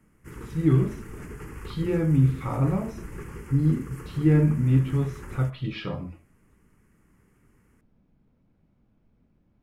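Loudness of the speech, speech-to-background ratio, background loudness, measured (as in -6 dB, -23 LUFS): -25.0 LUFS, 16.0 dB, -41.0 LUFS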